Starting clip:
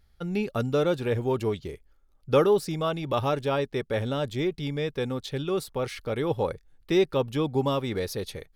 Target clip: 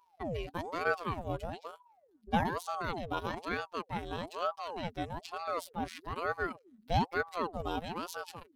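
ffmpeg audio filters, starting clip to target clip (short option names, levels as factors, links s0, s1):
-af "afftfilt=real='hypot(re,im)*cos(PI*b)':imag='0':win_size=1024:overlap=0.75,aeval=exprs='val(0)*sin(2*PI*600*n/s+600*0.65/1.1*sin(2*PI*1.1*n/s))':c=same,volume=0.794"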